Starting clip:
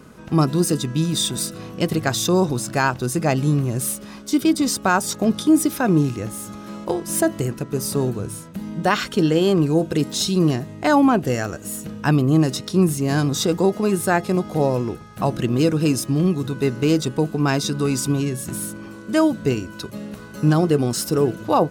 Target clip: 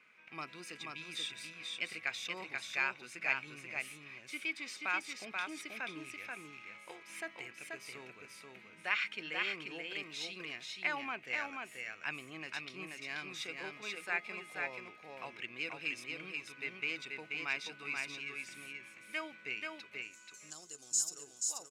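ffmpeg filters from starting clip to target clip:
-af "asetnsamples=n=441:p=0,asendcmd='20.02 bandpass f 7000',bandpass=f=2300:t=q:w=9.6:csg=0,aecho=1:1:483:0.668,volume=1.5"

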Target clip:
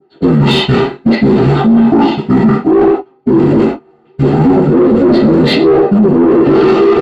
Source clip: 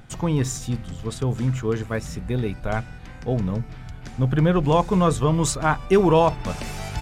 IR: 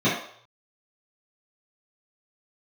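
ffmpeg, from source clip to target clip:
-filter_complex "[0:a]acrossover=split=240[s0][s1];[s0]acrusher=bits=5:mode=log:mix=0:aa=0.000001[s2];[s1]asoftclip=type=tanh:threshold=0.106[s3];[s2][s3]amix=inputs=2:normalize=0,equalizer=f=720:w=4.6:g=15,aecho=1:1:116|232|348:0.266|0.0665|0.0166,agate=range=0.0126:threshold=0.0447:ratio=16:detection=peak,asetrate=22696,aresample=44100,atempo=1.94306[s4];[1:a]atrim=start_sample=2205,atrim=end_sample=6174,asetrate=52920,aresample=44100[s5];[s4][s5]afir=irnorm=-1:irlink=0,adynamicequalizer=threshold=0.0562:dfrequency=2800:dqfactor=0.76:tfrequency=2800:tqfactor=0.76:attack=5:release=100:ratio=0.375:range=2:mode=cutabove:tftype=bell,areverse,acompressor=threshold=0.282:ratio=10,areverse,asplit=2[s6][s7];[s7]highpass=f=720:p=1,volume=7.08,asoftclip=type=tanh:threshold=0.562[s8];[s6][s8]amix=inputs=2:normalize=0,lowpass=f=1800:p=1,volume=0.501,alimiter=level_in=3.76:limit=0.891:release=50:level=0:latency=1,volume=0.891"

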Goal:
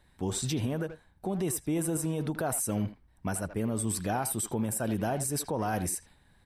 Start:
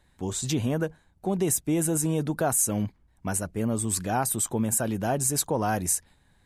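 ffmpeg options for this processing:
-filter_complex "[0:a]bandreject=f=6800:w=5.1,alimiter=limit=0.0794:level=0:latency=1:release=96,asplit=2[s0][s1];[s1]adelay=80,highpass=300,lowpass=3400,asoftclip=type=hard:threshold=0.0299,volume=0.355[s2];[s0][s2]amix=inputs=2:normalize=0"

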